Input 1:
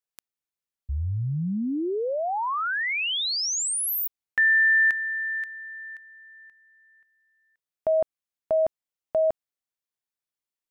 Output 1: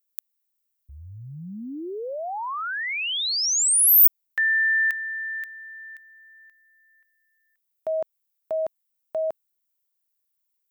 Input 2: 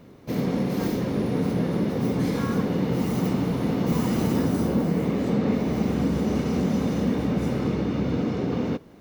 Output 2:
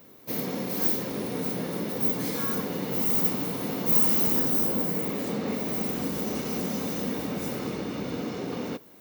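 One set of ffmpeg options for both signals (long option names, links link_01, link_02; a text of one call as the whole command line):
ffmpeg -i in.wav -af "aemphasis=mode=production:type=bsi,volume=-3dB" out.wav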